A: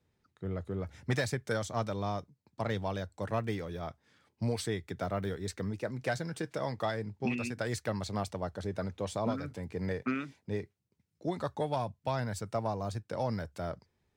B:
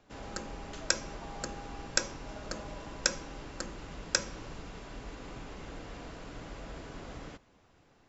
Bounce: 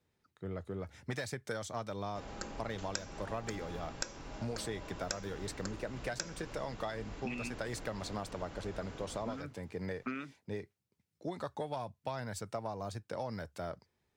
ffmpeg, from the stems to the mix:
-filter_complex "[0:a]lowshelf=f=240:g=-5.5,volume=-0.5dB[a];[1:a]adelay=2050,volume=-2.5dB[b];[a][b]amix=inputs=2:normalize=0,acompressor=threshold=-35dB:ratio=4"

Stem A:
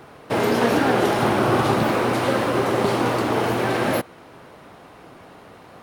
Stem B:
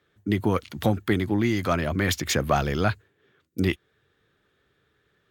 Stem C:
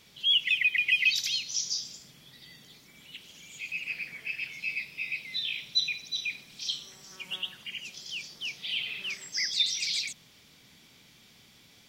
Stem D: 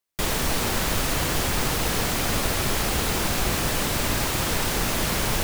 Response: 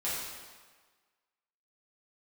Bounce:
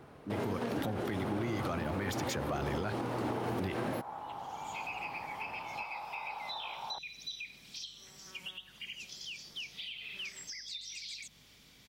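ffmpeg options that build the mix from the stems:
-filter_complex "[0:a]alimiter=limit=-14dB:level=0:latency=1:release=232,lowshelf=f=410:g=7.5,volume=-13dB[a];[1:a]dynaudnorm=f=310:g=3:m=11.5dB,volume=-14.5dB,asplit=2[b][c];[2:a]acompressor=threshold=-36dB:ratio=6,alimiter=level_in=6dB:limit=-24dB:level=0:latency=1:release=339,volume=-6dB,aeval=exprs='val(0)+0.000355*(sin(2*PI*50*n/s)+sin(2*PI*2*50*n/s)/2+sin(2*PI*3*50*n/s)/3+sin(2*PI*4*50*n/s)/4+sin(2*PI*5*50*n/s)/5)':c=same,adelay=1150,volume=-2.5dB[d];[3:a]lowpass=f=1.2k:w=0.5412,lowpass=f=1.2k:w=1.3066,flanger=delay=17:depth=4.7:speed=1.2,highpass=f=840:t=q:w=7.2,adelay=1550,volume=-17.5dB[e];[c]apad=whole_len=574650[f];[d][f]sidechaincompress=threshold=-49dB:ratio=8:attack=9:release=623[g];[a][b][g][e]amix=inputs=4:normalize=0,alimiter=level_in=2dB:limit=-24dB:level=0:latency=1:release=92,volume=-2dB"

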